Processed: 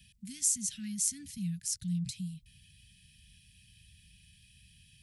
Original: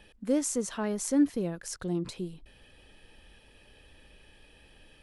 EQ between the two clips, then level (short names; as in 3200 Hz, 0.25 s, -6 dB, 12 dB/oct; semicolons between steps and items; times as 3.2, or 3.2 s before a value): HPF 92 Hz 12 dB/oct; inverse Chebyshev band-stop 350–1100 Hz, stop band 50 dB; tone controls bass +12 dB, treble +11 dB; -5.0 dB